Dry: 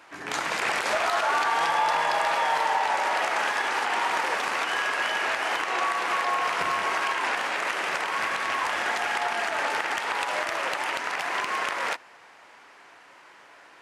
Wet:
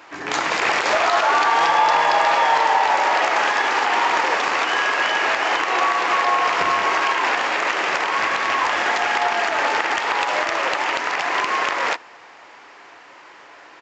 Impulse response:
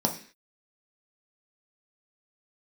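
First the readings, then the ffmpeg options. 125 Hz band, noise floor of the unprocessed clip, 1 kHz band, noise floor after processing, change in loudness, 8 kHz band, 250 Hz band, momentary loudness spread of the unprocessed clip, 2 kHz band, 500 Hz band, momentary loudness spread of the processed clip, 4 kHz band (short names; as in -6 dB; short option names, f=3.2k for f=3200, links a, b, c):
n/a, -52 dBFS, +7.5 dB, -45 dBFS, +7.0 dB, +4.0 dB, +8.0 dB, 4 LU, +6.5 dB, +7.5 dB, 5 LU, +6.5 dB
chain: -filter_complex "[0:a]asplit=2[a][b];[1:a]atrim=start_sample=2205,asetrate=61740,aresample=44100[c];[b][c]afir=irnorm=-1:irlink=0,volume=-25dB[d];[a][d]amix=inputs=2:normalize=0,aresample=16000,aresample=44100,volume=6.5dB"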